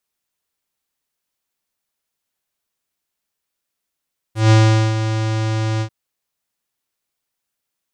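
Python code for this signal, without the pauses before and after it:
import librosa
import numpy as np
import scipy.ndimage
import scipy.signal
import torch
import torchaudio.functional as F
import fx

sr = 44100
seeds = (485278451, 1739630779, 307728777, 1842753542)

y = fx.sub_voice(sr, note=45, wave='square', cutoff_hz=7000.0, q=1.0, env_oct=1.0, env_s=0.07, attack_ms=155.0, decay_s=0.43, sustain_db=-10.0, release_s=0.08, note_s=1.46, slope=24)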